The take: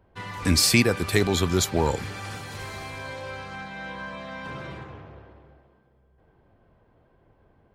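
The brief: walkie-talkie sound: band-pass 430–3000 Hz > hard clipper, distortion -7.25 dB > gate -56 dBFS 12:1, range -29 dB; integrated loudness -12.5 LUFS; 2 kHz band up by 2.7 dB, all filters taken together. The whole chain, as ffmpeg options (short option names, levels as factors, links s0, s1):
-af "highpass=430,lowpass=3000,equalizer=f=2000:t=o:g=4.5,asoftclip=type=hard:threshold=0.0668,agate=range=0.0355:threshold=0.00158:ratio=12,volume=9.44"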